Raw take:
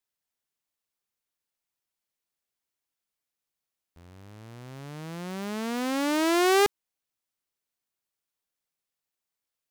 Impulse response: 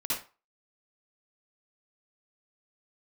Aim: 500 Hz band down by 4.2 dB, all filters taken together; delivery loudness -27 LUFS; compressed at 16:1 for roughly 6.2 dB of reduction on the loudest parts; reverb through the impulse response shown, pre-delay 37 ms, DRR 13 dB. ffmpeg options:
-filter_complex "[0:a]equalizer=f=500:t=o:g=-6.5,acompressor=threshold=0.0501:ratio=16,asplit=2[s0][s1];[1:a]atrim=start_sample=2205,adelay=37[s2];[s1][s2]afir=irnorm=-1:irlink=0,volume=0.112[s3];[s0][s3]amix=inputs=2:normalize=0,volume=1.78"

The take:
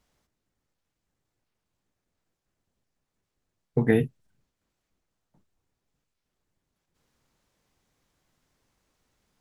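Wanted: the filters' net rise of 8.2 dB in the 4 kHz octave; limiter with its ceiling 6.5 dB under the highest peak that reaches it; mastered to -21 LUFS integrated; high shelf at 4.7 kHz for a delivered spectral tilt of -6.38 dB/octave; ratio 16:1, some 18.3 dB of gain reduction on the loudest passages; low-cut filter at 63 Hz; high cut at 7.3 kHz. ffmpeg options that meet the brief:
-af "highpass=63,lowpass=7300,equalizer=f=4000:t=o:g=8,highshelf=f=4700:g=5,acompressor=threshold=0.0224:ratio=16,volume=13.3,alimiter=limit=0.596:level=0:latency=1"

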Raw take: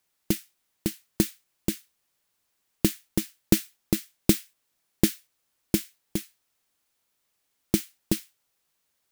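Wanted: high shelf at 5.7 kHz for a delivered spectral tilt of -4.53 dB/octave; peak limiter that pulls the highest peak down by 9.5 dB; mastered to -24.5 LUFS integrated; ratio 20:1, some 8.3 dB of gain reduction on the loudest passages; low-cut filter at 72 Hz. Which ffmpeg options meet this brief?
-af "highpass=72,highshelf=f=5700:g=-8.5,acompressor=threshold=0.0708:ratio=20,volume=7.08,alimiter=limit=1:level=0:latency=1"

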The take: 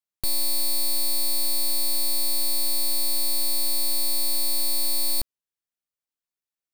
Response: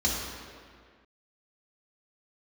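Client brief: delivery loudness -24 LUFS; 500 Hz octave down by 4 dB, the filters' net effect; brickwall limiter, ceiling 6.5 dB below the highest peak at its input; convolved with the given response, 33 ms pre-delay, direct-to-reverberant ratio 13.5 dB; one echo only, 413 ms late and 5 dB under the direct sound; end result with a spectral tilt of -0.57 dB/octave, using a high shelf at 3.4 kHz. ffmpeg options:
-filter_complex "[0:a]equalizer=f=500:t=o:g=-5,highshelf=f=3400:g=-4.5,alimiter=level_in=1.41:limit=0.0631:level=0:latency=1,volume=0.708,aecho=1:1:413:0.562,asplit=2[s0][s1];[1:a]atrim=start_sample=2205,adelay=33[s2];[s1][s2]afir=irnorm=-1:irlink=0,volume=0.0631[s3];[s0][s3]amix=inputs=2:normalize=0,volume=2.51"

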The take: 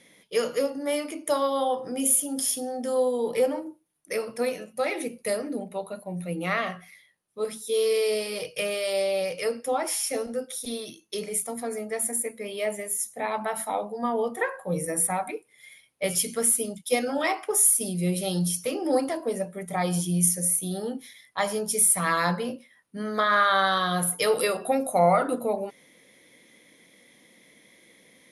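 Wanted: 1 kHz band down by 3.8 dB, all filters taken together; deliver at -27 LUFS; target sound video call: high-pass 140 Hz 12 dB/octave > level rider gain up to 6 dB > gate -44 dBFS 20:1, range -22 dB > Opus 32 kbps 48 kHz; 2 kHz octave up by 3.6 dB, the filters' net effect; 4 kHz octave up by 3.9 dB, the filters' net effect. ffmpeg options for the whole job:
-af "highpass=140,equalizer=f=1000:t=o:g=-7.5,equalizer=f=2000:t=o:g=6,equalizer=f=4000:t=o:g=3.5,dynaudnorm=m=2,agate=range=0.0794:threshold=0.00631:ratio=20,volume=0.668" -ar 48000 -c:a libopus -b:a 32k

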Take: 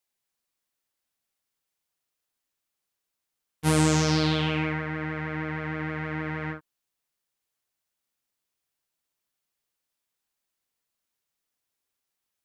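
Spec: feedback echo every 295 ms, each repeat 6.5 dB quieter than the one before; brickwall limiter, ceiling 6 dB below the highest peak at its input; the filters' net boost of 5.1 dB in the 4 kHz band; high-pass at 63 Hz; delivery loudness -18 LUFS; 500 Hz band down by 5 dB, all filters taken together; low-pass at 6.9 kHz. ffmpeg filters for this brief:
-af "highpass=63,lowpass=6900,equalizer=f=500:t=o:g=-6,equalizer=f=4000:t=o:g=7,alimiter=limit=0.211:level=0:latency=1,aecho=1:1:295|590|885|1180|1475|1770:0.473|0.222|0.105|0.0491|0.0231|0.0109,volume=3.16"

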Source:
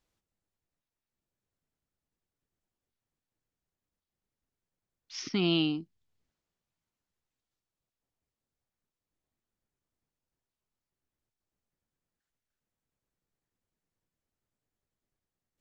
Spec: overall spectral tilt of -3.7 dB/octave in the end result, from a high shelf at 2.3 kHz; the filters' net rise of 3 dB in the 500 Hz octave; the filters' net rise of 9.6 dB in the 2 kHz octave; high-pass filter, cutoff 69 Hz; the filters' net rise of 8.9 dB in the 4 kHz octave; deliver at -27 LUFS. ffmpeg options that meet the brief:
-af "highpass=69,equalizer=f=500:t=o:g=5,equalizer=f=2000:t=o:g=8.5,highshelf=f=2300:g=4.5,equalizer=f=4000:t=o:g=4,volume=0.75"

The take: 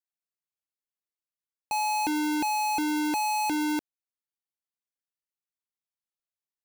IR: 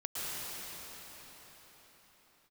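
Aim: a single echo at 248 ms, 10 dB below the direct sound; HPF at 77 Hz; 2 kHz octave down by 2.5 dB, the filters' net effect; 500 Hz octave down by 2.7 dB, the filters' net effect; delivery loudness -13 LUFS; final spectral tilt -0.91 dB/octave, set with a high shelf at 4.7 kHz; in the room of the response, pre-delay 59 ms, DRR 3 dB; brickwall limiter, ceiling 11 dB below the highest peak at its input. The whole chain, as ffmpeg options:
-filter_complex "[0:a]highpass=77,equalizer=f=500:t=o:g=-6.5,equalizer=f=2000:t=o:g=-5,highshelf=f=4700:g=6,alimiter=level_in=1.68:limit=0.0631:level=0:latency=1,volume=0.596,aecho=1:1:248:0.316,asplit=2[s0][s1];[1:a]atrim=start_sample=2205,adelay=59[s2];[s1][s2]afir=irnorm=-1:irlink=0,volume=0.398[s3];[s0][s3]amix=inputs=2:normalize=0,volume=15"

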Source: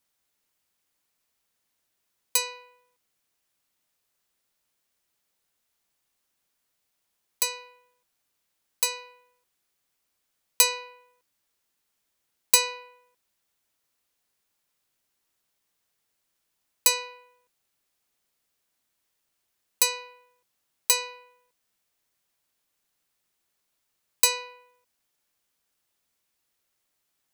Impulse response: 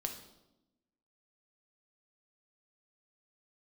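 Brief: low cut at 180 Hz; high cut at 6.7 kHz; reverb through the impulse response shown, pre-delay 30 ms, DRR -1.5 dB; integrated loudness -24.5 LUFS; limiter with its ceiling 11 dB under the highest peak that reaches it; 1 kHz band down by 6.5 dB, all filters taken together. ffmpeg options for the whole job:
-filter_complex "[0:a]highpass=180,lowpass=6700,equalizer=f=1000:t=o:g=-6.5,alimiter=limit=0.1:level=0:latency=1,asplit=2[s0][s1];[1:a]atrim=start_sample=2205,adelay=30[s2];[s1][s2]afir=irnorm=-1:irlink=0,volume=1.19[s3];[s0][s3]amix=inputs=2:normalize=0,volume=1.88"

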